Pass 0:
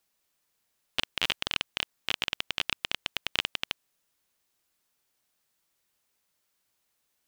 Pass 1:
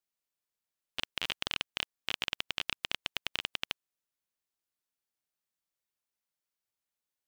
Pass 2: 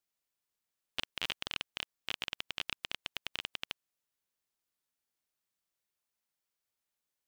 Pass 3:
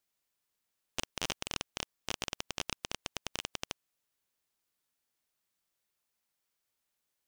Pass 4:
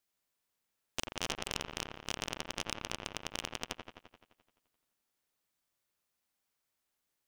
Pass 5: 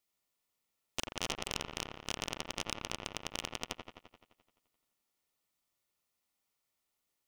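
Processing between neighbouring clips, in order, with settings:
output level in coarse steps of 19 dB; level +3.5 dB
brickwall limiter −18 dBFS, peak gain reduction 6.5 dB; level +1.5 dB
wavefolder on the positive side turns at −28.5 dBFS; level +4 dB
delay with a low-pass on its return 86 ms, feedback 66%, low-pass 2,100 Hz, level −4 dB; level −1 dB
Butterworth band-reject 1,600 Hz, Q 6.9

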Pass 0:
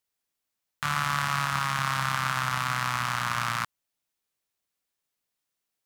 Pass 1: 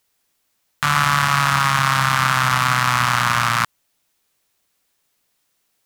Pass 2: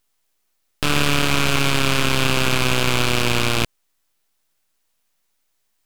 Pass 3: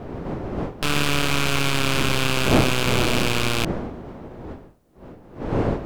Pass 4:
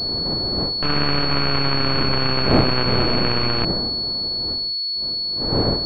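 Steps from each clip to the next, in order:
boost into a limiter +16 dB; level −1 dB
full-wave rectification
wind on the microphone 420 Hz −25 dBFS; level −3 dB
switching amplifier with a slow clock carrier 4,400 Hz; level +1.5 dB

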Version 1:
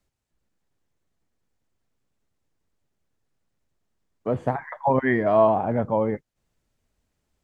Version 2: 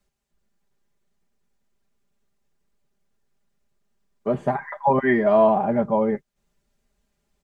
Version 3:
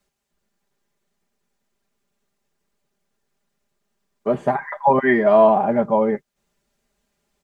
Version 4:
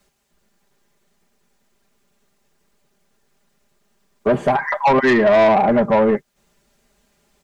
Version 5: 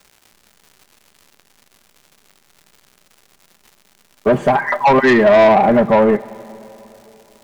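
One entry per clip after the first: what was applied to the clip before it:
comb filter 5 ms, depth 80%
low-shelf EQ 140 Hz −10 dB; level +4 dB
in parallel at +2 dB: downward compressor, threshold −22 dBFS, peak gain reduction 12.5 dB; on the sum: soft clipping −12.5 dBFS, distortion −11 dB; level +3 dB
surface crackle 230 per second −38 dBFS; dense smooth reverb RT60 3.5 s, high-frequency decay 0.9×, DRR 18.5 dB; level +3 dB

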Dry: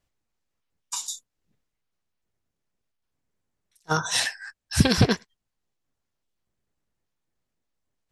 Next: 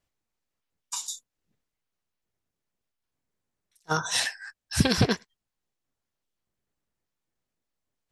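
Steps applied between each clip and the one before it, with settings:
low-shelf EQ 150 Hz −3.5 dB
level −2 dB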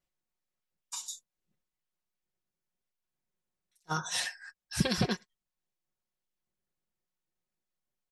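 comb filter 5.5 ms, depth 57%
level −7.5 dB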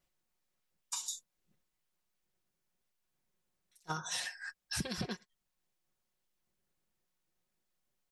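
downward compressor 8 to 1, threshold −40 dBFS, peak gain reduction 18.5 dB
level +5 dB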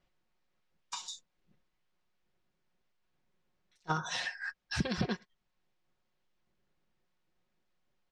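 high-frequency loss of the air 160 metres
level +6.5 dB

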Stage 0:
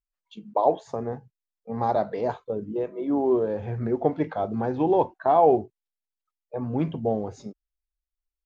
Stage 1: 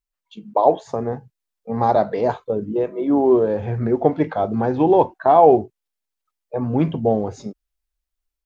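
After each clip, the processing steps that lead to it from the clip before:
automatic gain control gain up to 4 dB
level +3 dB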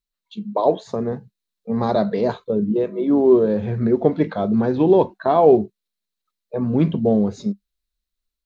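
thirty-one-band graphic EQ 200 Hz +12 dB, 400 Hz +3 dB, 800 Hz −8 dB, 4,000 Hz +10 dB
level −1 dB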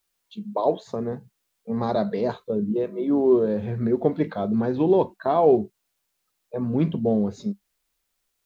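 bit-depth reduction 12 bits, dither triangular
level −4.5 dB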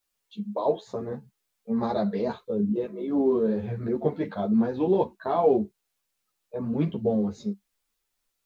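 string-ensemble chorus

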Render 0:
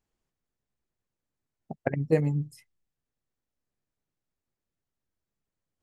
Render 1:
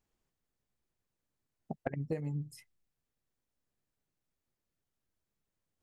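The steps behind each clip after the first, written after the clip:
downward compressor 20 to 1, threshold −32 dBFS, peak gain reduction 16 dB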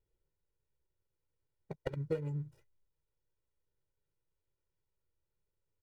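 running median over 41 samples
comb filter 2.1 ms, depth 97%
level −2 dB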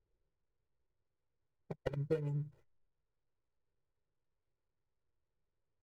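running median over 15 samples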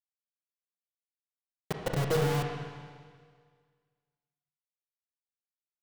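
log-companded quantiser 2 bits
convolution reverb RT60 1.8 s, pre-delay 26 ms, DRR 2 dB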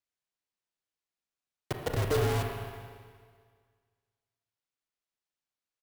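far-end echo of a speakerphone 270 ms, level −13 dB
frequency shifter −35 Hz
sample-rate reduction 14,000 Hz, jitter 0%

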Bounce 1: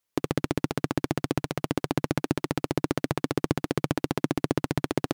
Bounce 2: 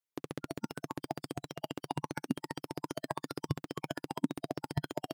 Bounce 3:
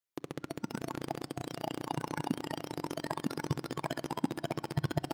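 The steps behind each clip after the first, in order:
low-shelf EQ 68 Hz −10 dB; noise reduction from a noise print of the clip's start 13 dB
delay that plays each chunk backwards 697 ms, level −1.5 dB; on a send at −17 dB: convolution reverb RT60 1.7 s, pre-delay 6 ms

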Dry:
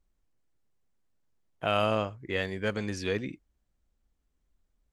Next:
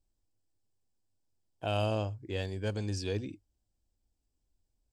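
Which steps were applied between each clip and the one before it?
thirty-one-band graphic EQ 100 Hz +11 dB, 160 Hz −4 dB, 315 Hz +4 dB, 800 Hz +3 dB, 1,250 Hz −11 dB, 2,000 Hz −12 dB, 5,000 Hz +8 dB, 8,000 Hz +8 dB
level −5 dB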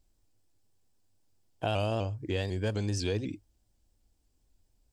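downward compressor 2.5 to 1, threshold −38 dBFS, peak gain reduction 8.5 dB
pitch modulation by a square or saw wave saw up 4 Hz, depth 100 cents
level +8.5 dB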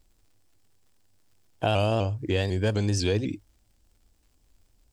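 surface crackle 130 per second −62 dBFS
level +6 dB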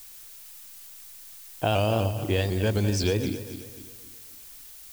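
feedback delay that plays each chunk backwards 132 ms, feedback 62%, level −10.5 dB
background noise blue −46 dBFS

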